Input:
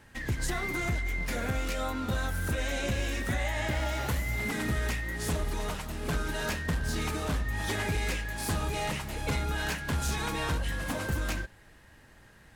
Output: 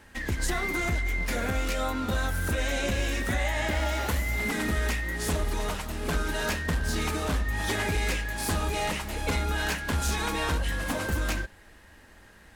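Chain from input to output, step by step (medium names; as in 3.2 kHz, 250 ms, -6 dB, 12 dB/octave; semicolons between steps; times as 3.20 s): peaking EQ 130 Hz -15 dB 0.31 oct; trim +3.5 dB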